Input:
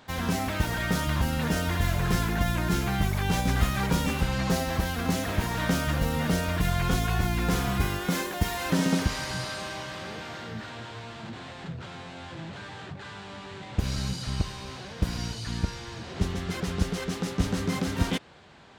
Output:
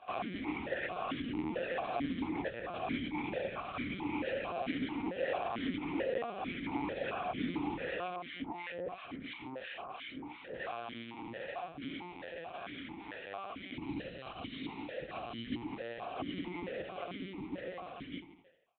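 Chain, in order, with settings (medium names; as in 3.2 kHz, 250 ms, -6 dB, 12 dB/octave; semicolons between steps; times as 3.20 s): fade out at the end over 2.69 s; compression 3:1, threshold -29 dBFS, peak gain reduction 9.5 dB; doubling 17 ms -5 dB; feedback delay 77 ms, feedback 56%, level -8 dB; peak limiter -21.5 dBFS, peak gain reduction 5.5 dB; 8.15–10.55 s: harmonic tremolo 2.9 Hz, depth 100%, crossover 1.2 kHz; LPC vocoder at 8 kHz pitch kept; stepped vowel filter 4.5 Hz; trim +8.5 dB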